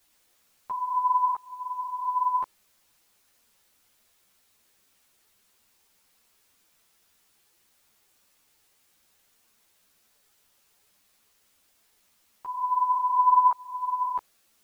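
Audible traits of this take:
tremolo saw up 0.74 Hz, depth 100%
a quantiser's noise floor 12 bits, dither triangular
a shimmering, thickened sound

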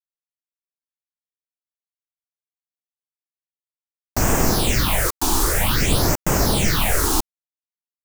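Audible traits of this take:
phaser sweep stages 6, 0.52 Hz, lowest notch 140–3,900 Hz
a quantiser's noise floor 6 bits, dither none

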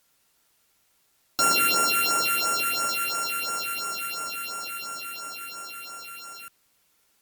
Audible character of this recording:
a buzz of ramps at a fixed pitch in blocks of 32 samples
phaser sweep stages 4, 2.9 Hz, lowest notch 790–4,100 Hz
a quantiser's noise floor 12 bits, dither triangular
Opus

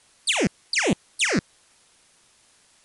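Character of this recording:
phaser sweep stages 6, 1.2 Hz, lowest notch 790–1,600 Hz
a quantiser's noise floor 10 bits, dither triangular
MP3

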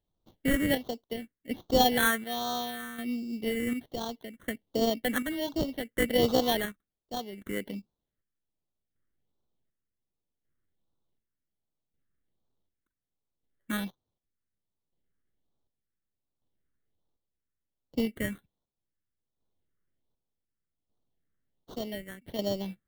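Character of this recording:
aliases and images of a low sample rate 2,500 Hz, jitter 0%
phaser sweep stages 4, 1.3 Hz, lowest notch 800–1,900 Hz
chopped level 0.67 Hz, depth 60%, duty 50%

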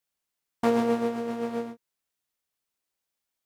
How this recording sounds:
background noise floor −85 dBFS
spectral slope −3.0 dB per octave

